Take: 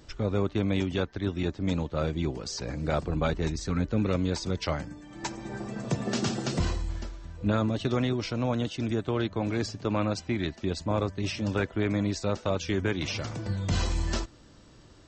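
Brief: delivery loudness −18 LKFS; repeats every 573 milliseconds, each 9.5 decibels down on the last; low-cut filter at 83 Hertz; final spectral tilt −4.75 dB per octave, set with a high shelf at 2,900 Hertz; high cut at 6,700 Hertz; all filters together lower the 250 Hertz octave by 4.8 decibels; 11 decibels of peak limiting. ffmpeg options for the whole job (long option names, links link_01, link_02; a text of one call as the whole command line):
ffmpeg -i in.wav -af "highpass=83,lowpass=6700,equalizer=frequency=250:width_type=o:gain=-6.5,highshelf=frequency=2900:gain=4,alimiter=level_in=2.5dB:limit=-24dB:level=0:latency=1,volume=-2.5dB,aecho=1:1:573|1146|1719|2292:0.335|0.111|0.0365|0.012,volume=18.5dB" out.wav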